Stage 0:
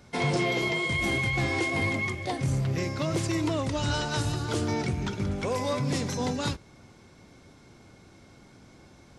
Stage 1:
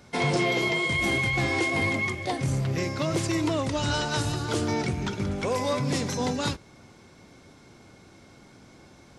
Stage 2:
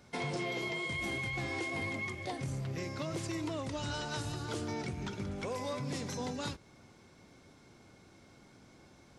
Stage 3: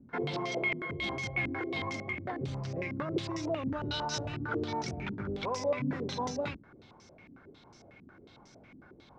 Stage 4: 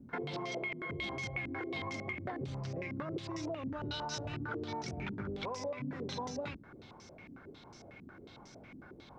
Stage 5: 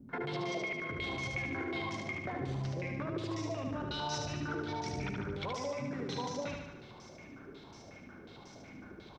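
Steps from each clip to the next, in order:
bass shelf 120 Hz -5 dB; trim +2.5 dB
compression 2:1, threshold -30 dBFS, peak gain reduction 5.5 dB; trim -7 dB
step-sequenced low-pass 11 Hz 260–5800 Hz
compression, threshold -39 dBFS, peak gain reduction 13 dB; trim +2.5 dB
feedback delay 74 ms, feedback 59%, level -4 dB

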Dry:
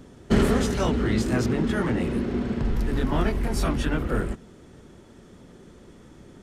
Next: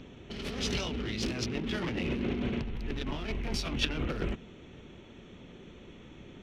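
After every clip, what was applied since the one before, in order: local Wiener filter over 9 samples; compressor with a negative ratio -28 dBFS, ratio -1; high-order bell 3.7 kHz +14.5 dB; trim -6 dB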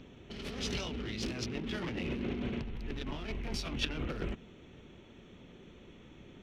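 endings held to a fixed fall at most 490 dB/s; trim -4 dB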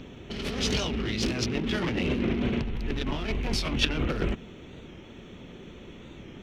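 warped record 45 rpm, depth 100 cents; trim +9 dB

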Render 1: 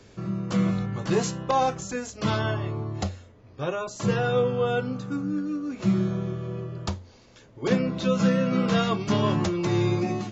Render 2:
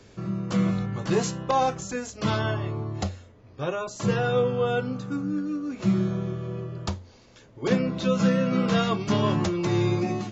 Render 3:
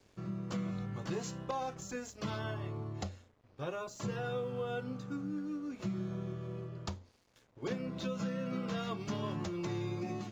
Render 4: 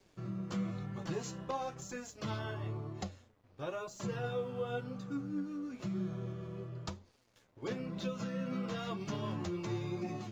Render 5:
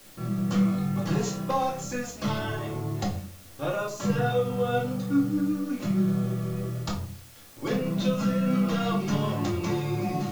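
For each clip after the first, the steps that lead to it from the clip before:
no audible change
compression 5:1, threshold -25 dBFS, peak gain reduction 8.5 dB; crossover distortion -54 dBFS; trim -8.5 dB
flange 1 Hz, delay 4.8 ms, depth 7 ms, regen +45%; trim +3 dB
in parallel at -11.5 dB: word length cut 8-bit, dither triangular; on the sum: simulated room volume 400 m³, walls furnished, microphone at 2.3 m; trim +5 dB

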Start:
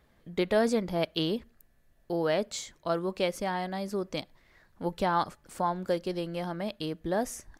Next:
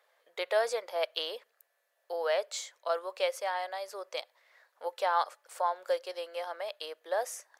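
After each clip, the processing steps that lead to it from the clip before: elliptic high-pass 510 Hz, stop band 80 dB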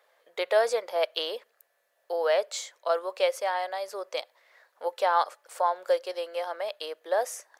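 bass shelf 480 Hz +6 dB; trim +3 dB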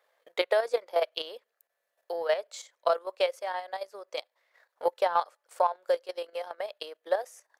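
transient shaper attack +9 dB, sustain -6 dB; level held to a coarse grid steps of 10 dB; trim -2 dB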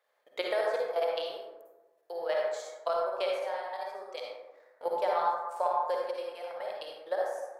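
reverberation RT60 1.2 s, pre-delay 42 ms, DRR -2.5 dB; trim -6.5 dB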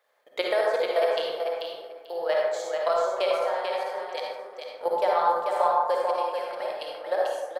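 feedback delay 440 ms, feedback 17%, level -5 dB; trim +5.5 dB

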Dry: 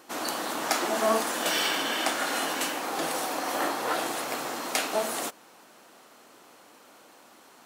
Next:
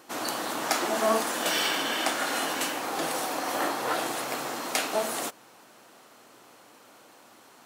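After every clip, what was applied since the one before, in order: peaking EQ 120 Hz +10 dB 0.26 oct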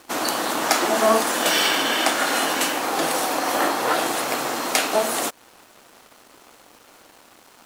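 high-pass 130 Hz; in parallel at -3 dB: compression, threshold -36 dBFS, peak gain reduction 15.5 dB; on the sum: crossover distortion -50.5 dBFS; trim +6 dB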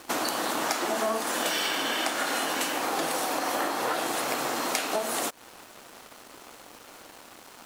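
compression 5:1, threshold -28 dBFS, peak gain reduction 14 dB; trim +2 dB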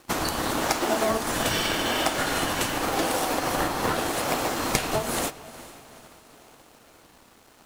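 in parallel at -6 dB: decimation with a swept rate 39×, swing 100% 0.87 Hz; on the sum: echo that smears into a reverb 456 ms, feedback 56%, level -12.5 dB; upward expansion 1.5:1, over -45 dBFS; trim +3 dB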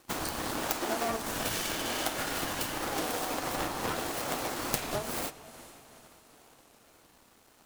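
self-modulated delay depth 0.59 ms; treble shelf 7.1 kHz +5 dB; warped record 33 1/3 rpm, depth 100 cents; trim -7 dB

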